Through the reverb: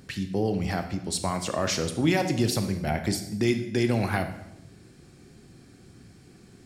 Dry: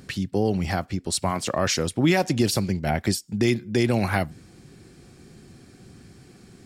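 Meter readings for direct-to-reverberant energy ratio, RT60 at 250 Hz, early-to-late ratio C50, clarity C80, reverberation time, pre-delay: 7.0 dB, 1.1 s, 9.5 dB, 12.0 dB, 0.85 s, 19 ms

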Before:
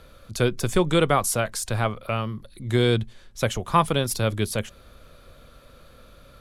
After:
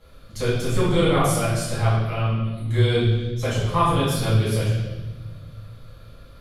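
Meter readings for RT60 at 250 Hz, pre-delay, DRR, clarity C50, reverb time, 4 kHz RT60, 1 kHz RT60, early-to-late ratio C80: 2.4 s, 5 ms, -11.5 dB, -0.5 dB, 1.2 s, 1.2 s, 1.0 s, 3.0 dB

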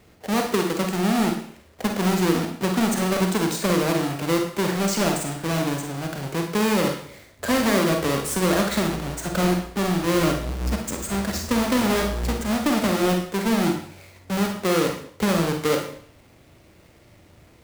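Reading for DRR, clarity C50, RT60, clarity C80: 2.5 dB, 6.0 dB, 0.60 s, 10.0 dB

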